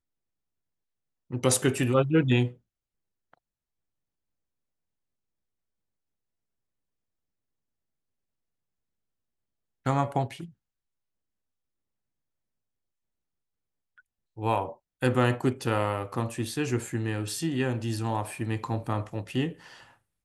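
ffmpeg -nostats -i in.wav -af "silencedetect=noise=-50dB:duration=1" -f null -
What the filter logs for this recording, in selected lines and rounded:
silence_start: 0.00
silence_end: 1.30 | silence_duration: 1.30
silence_start: 3.34
silence_end: 9.85 | silence_duration: 6.51
silence_start: 10.51
silence_end: 13.98 | silence_duration: 3.47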